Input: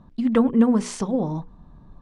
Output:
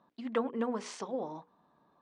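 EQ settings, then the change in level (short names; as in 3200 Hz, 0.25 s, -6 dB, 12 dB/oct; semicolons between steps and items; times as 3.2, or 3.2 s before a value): BPF 450–5700 Hz; -7.0 dB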